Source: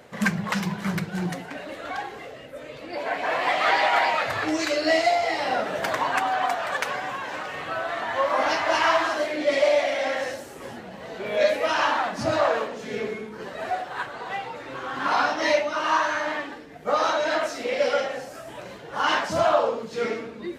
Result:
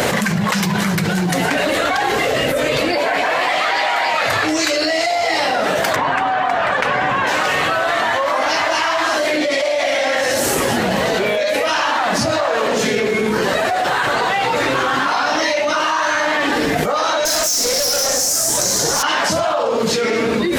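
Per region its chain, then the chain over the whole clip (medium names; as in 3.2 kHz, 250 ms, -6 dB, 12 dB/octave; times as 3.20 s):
5.96–7.27 s: low-pass 11 kHz + tone controls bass +6 dB, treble -15 dB
17.25–19.03 s: resonant high shelf 4.1 kHz +13.5 dB, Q 3 + valve stage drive 29 dB, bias 0.5
whole clip: treble shelf 3.7 kHz +8 dB; level flattener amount 100%; trim -2 dB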